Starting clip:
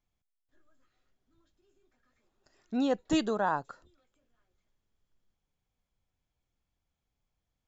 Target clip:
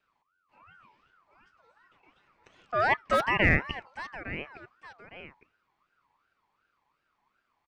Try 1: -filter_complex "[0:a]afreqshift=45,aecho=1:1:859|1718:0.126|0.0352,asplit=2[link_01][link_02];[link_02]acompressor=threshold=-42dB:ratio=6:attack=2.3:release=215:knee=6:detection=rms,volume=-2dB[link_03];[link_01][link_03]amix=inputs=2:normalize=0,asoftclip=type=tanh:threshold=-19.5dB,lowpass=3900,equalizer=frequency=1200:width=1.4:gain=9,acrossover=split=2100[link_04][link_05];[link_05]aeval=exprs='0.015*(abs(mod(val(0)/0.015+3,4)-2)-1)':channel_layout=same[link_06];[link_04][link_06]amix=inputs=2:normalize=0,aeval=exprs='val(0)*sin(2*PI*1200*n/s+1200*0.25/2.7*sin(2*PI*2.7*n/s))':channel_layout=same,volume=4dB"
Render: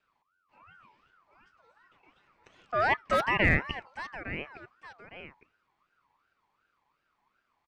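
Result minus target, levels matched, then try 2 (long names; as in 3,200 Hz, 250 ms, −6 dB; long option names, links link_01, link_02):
soft clipping: distortion +12 dB
-filter_complex "[0:a]afreqshift=45,aecho=1:1:859|1718:0.126|0.0352,asplit=2[link_01][link_02];[link_02]acompressor=threshold=-42dB:ratio=6:attack=2.3:release=215:knee=6:detection=rms,volume=-2dB[link_03];[link_01][link_03]amix=inputs=2:normalize=0,asoftclip=type=tanh:threshold=-12.5dB,lowpass=3900,equalizer=frequency=1200:width=1.4:gain=9,acrossover=split=2100[link_04][link_05];[link_05]aeval=exprs='0.015*(abs(mod(val(0)/0.015+3,4)-2)-1)':channel_layout=same[link_06];[link_04][link_06]amix=inputs=2:normalize=0,aeval=exprs='val(0)*sin(2*PI*1200*n/s+1200*0.25/2.7*sin(2*PI*2.7*n/s))':channel_layout=same,volume=4dB"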